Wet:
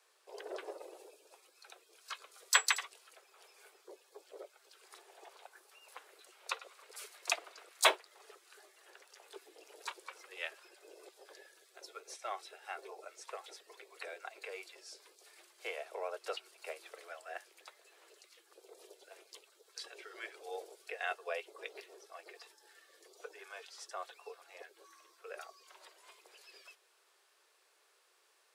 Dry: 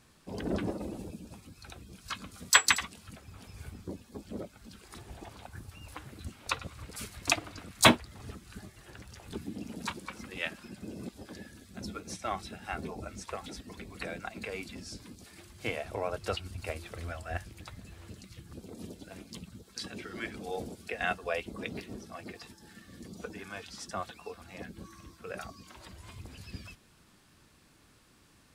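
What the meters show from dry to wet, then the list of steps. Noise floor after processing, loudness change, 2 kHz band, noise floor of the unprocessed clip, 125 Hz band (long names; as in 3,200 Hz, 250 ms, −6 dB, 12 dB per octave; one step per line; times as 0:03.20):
−71 dBFS, −5.5 dB, −6.0 dB, −62 dBFS, below −40 dB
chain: Butterworth high-pass 380 Hz 72 dB per octave
level −6 dB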